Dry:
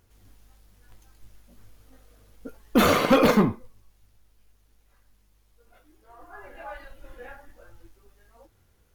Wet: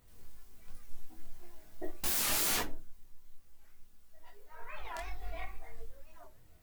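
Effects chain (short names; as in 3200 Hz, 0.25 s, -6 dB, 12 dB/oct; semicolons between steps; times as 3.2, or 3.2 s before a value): wrapped overs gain 27 dB; high shelf 7300 Hz +8 dB; shoebox room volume 220 m³, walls furnished, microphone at 0.88 m; chorus voices 6, 0.25 Hz, delay 30 ms, depth 3.7 ms; speed mistake 33 rpm record played at 45 rpm; record warp 45 rpm, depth 250 cents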